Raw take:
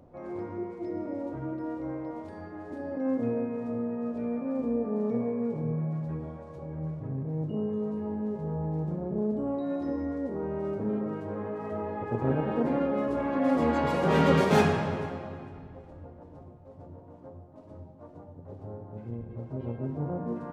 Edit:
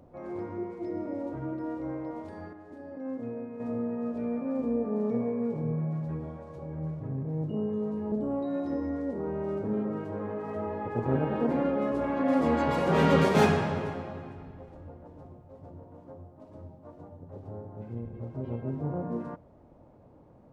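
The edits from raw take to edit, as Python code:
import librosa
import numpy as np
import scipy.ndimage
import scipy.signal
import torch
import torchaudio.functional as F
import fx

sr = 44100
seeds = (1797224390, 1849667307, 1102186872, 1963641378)

y = fx.edit(x, sr, fx.clip_gain(start_s=2.53, length_s=1.07, db=-7.5),
    fx.cut(start_s=8.12, length_s=1.16), tone=tone)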